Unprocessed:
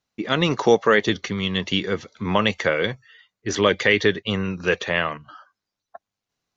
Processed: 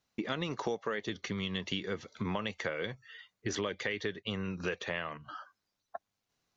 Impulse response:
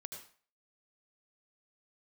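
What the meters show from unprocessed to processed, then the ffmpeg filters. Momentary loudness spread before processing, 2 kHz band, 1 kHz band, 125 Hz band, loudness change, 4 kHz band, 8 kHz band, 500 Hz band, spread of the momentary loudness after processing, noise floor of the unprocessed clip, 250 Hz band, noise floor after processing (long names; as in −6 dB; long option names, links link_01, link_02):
11 LU, −15.5 dB, −15.0 dB, −12.5 dB, −15.0 dB, −14.0 dB, can't be measured, −16.0 dB, 14 LU, below −85 dBFS, −13.0 dB, −85 dBFS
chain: -af "acompressor=threshold=-33dB:ratio=6"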